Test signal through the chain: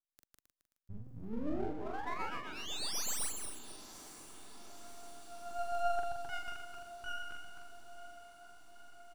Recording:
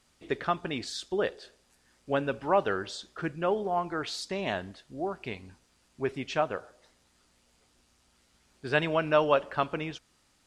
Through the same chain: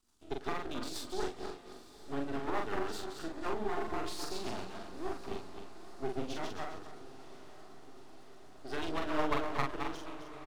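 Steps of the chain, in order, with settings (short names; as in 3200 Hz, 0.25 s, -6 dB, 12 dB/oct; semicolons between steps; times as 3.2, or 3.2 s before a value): regenerating reverse delay 0.133 s, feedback 52%, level -3.5 dB; rotary speaker horn 8 Hz; fixed phaser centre 540 Hz, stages 6; half-wave rectifier; doubler 43 ms -3.5 dB; diffused feedback echo 0.972 s, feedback 70%, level -15.5 dB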